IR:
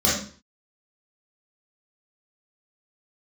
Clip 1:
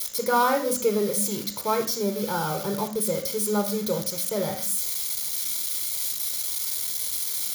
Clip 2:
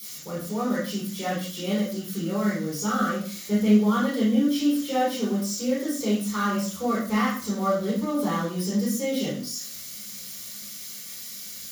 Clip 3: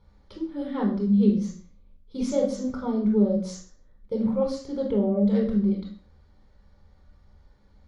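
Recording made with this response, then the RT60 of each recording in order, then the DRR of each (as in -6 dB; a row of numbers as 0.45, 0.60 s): 2; 0.45, 0.45, 0.45 s; 4.5, -8.5, -1.5 dB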